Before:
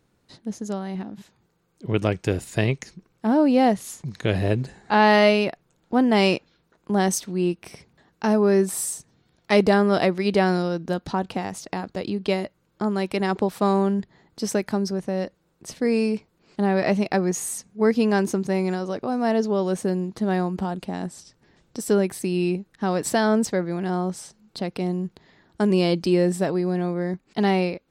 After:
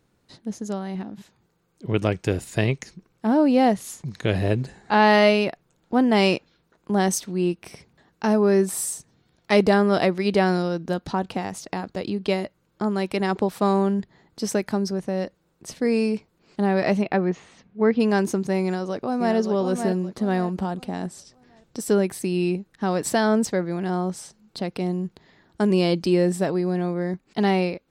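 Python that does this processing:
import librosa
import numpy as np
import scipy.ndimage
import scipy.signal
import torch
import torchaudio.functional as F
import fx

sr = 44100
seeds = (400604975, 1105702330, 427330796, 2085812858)

y = fx.lowpass(x, sr, hz=3500.0, slope=24, at=(17.01, 17.99), fade=0.02)
y = fx.echo_throw(y, sr, start_s=18.63, length_s=0.72, ms=570, feedback_pct=35, wet_db=-6.5)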